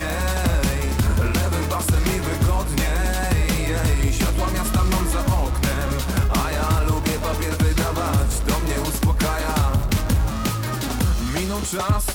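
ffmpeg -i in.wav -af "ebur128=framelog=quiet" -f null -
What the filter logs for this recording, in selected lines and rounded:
Integrated loudness:
  I:         -21.6 LUFS
  Threshold: -31.6 LUFS
Loudness range:
  LRA:         0.7 LU
  Threshold: -41.5 LUFS
  LRA low:   -22.0 LUFS
  LRA high:  -21.3 LUFS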